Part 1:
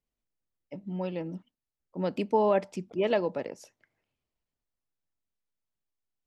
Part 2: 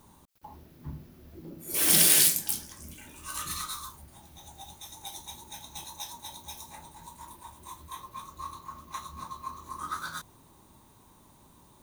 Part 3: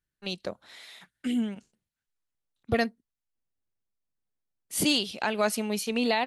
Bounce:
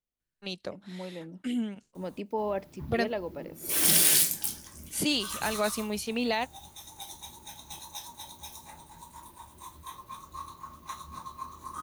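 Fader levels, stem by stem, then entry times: -7.0, -1.5, -3.0 dB; 0.00, 1.95, 0.20 s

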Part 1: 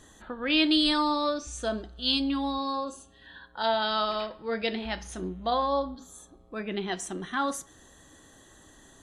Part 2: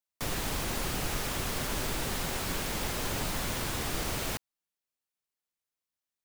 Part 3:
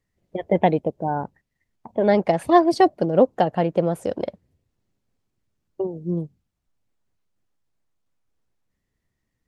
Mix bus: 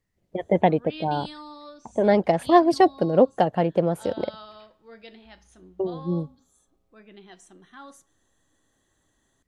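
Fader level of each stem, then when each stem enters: -16.0 dB, off, -1.0 dB; 0.40 s, off, 0.00 s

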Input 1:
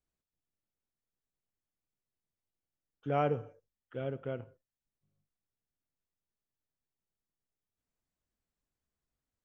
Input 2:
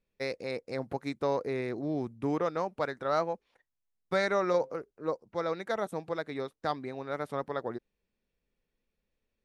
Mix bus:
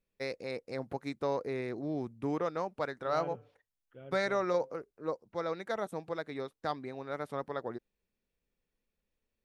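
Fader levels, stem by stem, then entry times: -12.5, -3.0 dB; 0.00, 0.00 s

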